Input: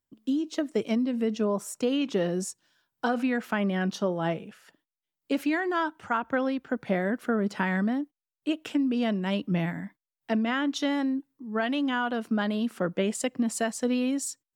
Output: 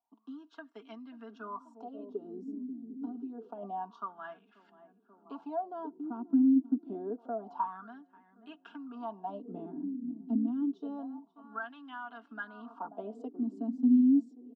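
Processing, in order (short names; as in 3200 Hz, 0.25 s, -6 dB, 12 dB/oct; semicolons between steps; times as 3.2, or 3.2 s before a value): bell 2300 Hz -12.5 dB 0.3 oct; fixed phaser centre 510 Hz, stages 6; 1.56–3.63 compressor 3:1, threshold -38 dBFS, peak gain reduction 11 dB; LPF 4400 Hz 12 dB/oct; comb 4.3 ms, depth 70%; narrowing echo 0.535 s, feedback 68%, band-pass 310 Hz, level -13.5 dB; wah 0.27 Hz 260–2000 Hz, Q 7.8; dynamic EQ 250 Hz, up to +4 dB, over -39 dBFS; three-band squash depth 40%; gain +5 dB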